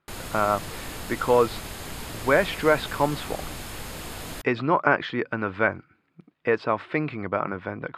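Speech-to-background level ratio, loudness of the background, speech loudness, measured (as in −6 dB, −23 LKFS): 10.5 dB, −36.0 LKFS, −25.5 LKFS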